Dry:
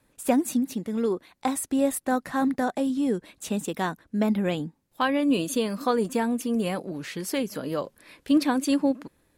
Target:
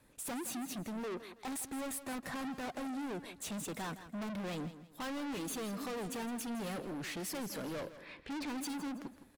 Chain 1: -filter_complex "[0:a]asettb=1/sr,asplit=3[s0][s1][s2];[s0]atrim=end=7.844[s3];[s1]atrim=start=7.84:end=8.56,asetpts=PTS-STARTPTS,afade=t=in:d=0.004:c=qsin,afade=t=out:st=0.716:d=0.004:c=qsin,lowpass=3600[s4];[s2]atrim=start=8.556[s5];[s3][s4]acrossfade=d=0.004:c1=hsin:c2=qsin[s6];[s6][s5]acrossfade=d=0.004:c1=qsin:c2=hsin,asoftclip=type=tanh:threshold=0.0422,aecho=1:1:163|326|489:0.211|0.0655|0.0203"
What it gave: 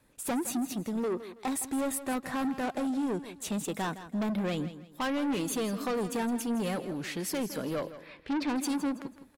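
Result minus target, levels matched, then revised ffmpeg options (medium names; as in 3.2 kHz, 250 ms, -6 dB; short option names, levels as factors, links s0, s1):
saturation: distortion -5 dB
-filter_complex "[0:a]asettb=1/sr,asplit=3[s0][s1][s2];[s0]atrim=end=7.844[s3];[s1]atrim=start=7.84:end=8.56,asetpts=PTS-STARTPTS,afade=t=in:d=0.004:c=qsin,afade=t=out:st=0.716:d=0.004:c=qsin,lowpass=3600[s4];[s2]atrim=start=8.556[s5];[s3][s4]acrossfade=d=0.004:c1=hsin:c2=qsin[s6];[s6][s5]acrossfade=d=0.004:c1=qsin:c2=hsin,asoftclip=type=tanh:threshold=0.0119,aecho=1:1:163|326|489:0.211|0.0655|0.0203"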